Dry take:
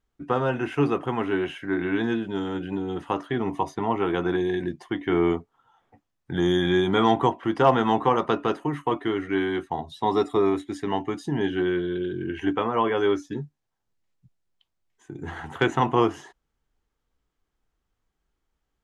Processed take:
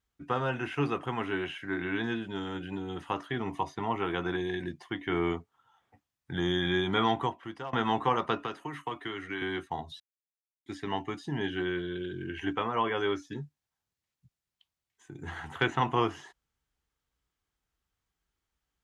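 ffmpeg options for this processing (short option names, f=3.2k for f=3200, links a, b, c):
-filter_complex "[0:a]asettb=1/sr,asplit=3[a][b][c];[a]atrim=end=8.444[d];[b]atrim=start=8.44:end=9.42,asetpts=PTS-STARTPTS,afade=t=in:d=0.004:c=qsin,afade=t=out:st=0.976:d=0.004:c=qsin,acrossover=split=230|1000[e][f][g];[e]acompressor=threshold=-41dB:ratio=4[h];[f]acompressor=threshold=-31dB:ratio=4[i];[g]acompressor=threshold=-33dB:ratio=4[j];[h][i][j]amix=inputs=3:normalize=0[k];[c]atrim=start=9.416[l];[d][k]acrossfade=d=0.004:c1=hsin:c2=qsin[m];[m][l]acrossfade=d=0.004:c1=qsin:c2=hsin,asplit=4[n][o][p][q];[n]atrim=end=7.73,asetpts=PTS-STARTPTS,afade=t=out:st=7.02:d=0.71:silence=0.0841395[r];[o]atrim=start=7.73:end=10,asetpts=PTS-STARTPTS,afade=t=in:d=0.004:c=hsin:silence=0.0841395,afade=t=out:st=2.266:d=0.004:c=hsin[s];[p]atrim=start=10:end=10.66,asetpts=PTS-STARTPTS,volume=0[t];[q]atrim=start=10.66,asetpts=PTS-STARTPTS,afade=t=in:d=0.004:c=hsin[u];[r][s][t][u]concat=n=4:v=0:a=1,acrossover=split=4800[v][w];[w]acompressor=threshold=-59dB:ratio=4:attack=1:release=60[x];[v][x]amix=inputs=2:normalize=0,highpass=59,equalizer=f=360:w=0.36:g=-8.5"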